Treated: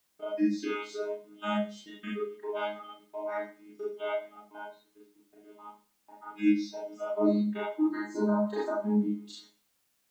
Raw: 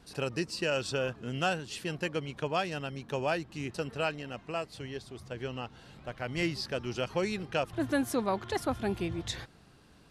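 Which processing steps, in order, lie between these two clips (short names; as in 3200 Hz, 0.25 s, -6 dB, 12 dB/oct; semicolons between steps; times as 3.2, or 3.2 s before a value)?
chord vocoder bare fifth, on G#3; spectral noise reduction 18 dB; gate -59 dBFS, range -20 dB; Schroeder reverb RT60 0.39 s, combs from 26 ms, DRR -6 dB; requantised 12-bit, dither triangular; gain -2 dB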